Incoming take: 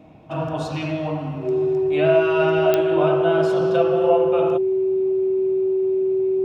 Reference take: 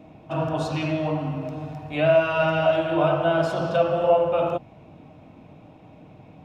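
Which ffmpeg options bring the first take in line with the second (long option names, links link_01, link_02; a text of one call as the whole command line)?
ffmpeg -i in.wav -af "adeclick=threshold=4,bandreject=frequency=380:width=30" out.wav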